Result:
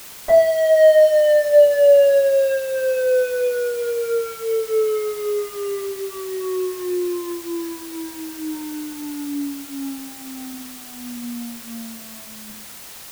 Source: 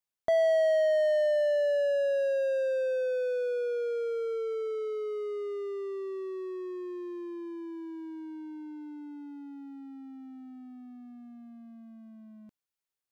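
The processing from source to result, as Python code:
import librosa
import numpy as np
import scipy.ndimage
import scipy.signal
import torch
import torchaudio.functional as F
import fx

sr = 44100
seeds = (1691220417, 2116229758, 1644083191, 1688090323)

y = fx.bandpass_edges(x, sr, low_hz=130.0, high_hz=5200.0, at=(10.51, 11.15))
y = fx.room_shoebox(y, sr, seeds[0], volume_m3=41.0, walls='mixed', distance_m=2.8)
y = fx.quant_dither(y, sr, seeds[1], bits=6, dither='triangular')
y = y * librosa.db_to_amplitude(-2.5)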